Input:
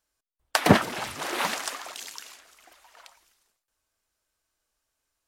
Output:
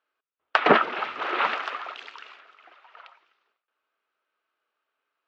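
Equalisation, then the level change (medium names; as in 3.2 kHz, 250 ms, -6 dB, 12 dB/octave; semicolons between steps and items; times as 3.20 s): cabinet simulation 350–3300 Hz, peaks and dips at 410 Hz +5 dB, 1.3 kHz +9 dB, 2.6 kHz +3 dB; +1.0 dB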